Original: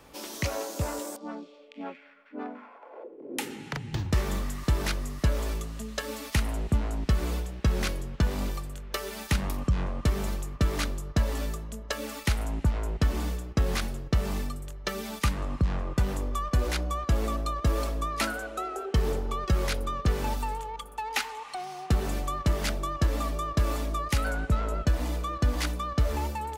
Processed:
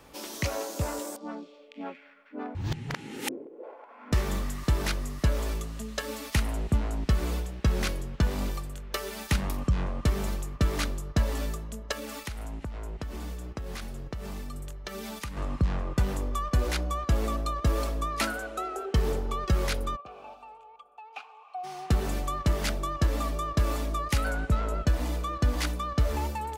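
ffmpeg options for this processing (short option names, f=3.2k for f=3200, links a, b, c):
-filter_complex "[0:a]asettb=1/sr,asplit=3[a][b][c];[a]atrim=end=11.924[d];[b]atrim=start=11.92:end=15.37,asetpts=PTS-STARTPTS,afade=t=in:d=0.004:c=qsin,afade=t=out:st=3.446:d=0.004:c=qsin,acompressor=threshold=-33dB:ratio=6:attack=3.2:release=140:knee=1:detection=peak[e];[c]atrim=start=15.366[f];[d][e]acrossfade=d=0.004:c1=hsin:c2=qsin[g];[g][f]acrossfade=d=0.004:c1=qsin:c2=hsin,asplit=3[h][i][j];[h]afade=t=out:st=19.95:d=0.02[k];[i]asplit=3[l][m][n];[l]bandpass=f=730:t=q:w=8,volume=0dB[o];[m]bandpass=f=1.09k:t=q:w=8,volume=-6dB[p];[n]bandpass=f=2.44k:t=q:w=8,volume=-9dB[q];[o][p][q]amix=inputs=3:normalize=0,afade=t=in:st=19.95:d=0.02,afade=t=out:st=21.63:d=0.02[r];[j]afade=t=in:st=21.63:d=0.02[s];[k][r][s]amix=inputs=3:normalize=0,asplit=3[t][u][v];[t]atrim=end=2.552[w];[u]atrim=start=2.548:end=4.122,asetpts=PTS-STARTPTS,areverse[x];[v]atrim=start=4.118[y];[w][x]acrossfade=d=0.004:c1=hsin:c2=hsin[z];[z][y]acrossfade=d=0.004:c1=hsin:c2=hsin"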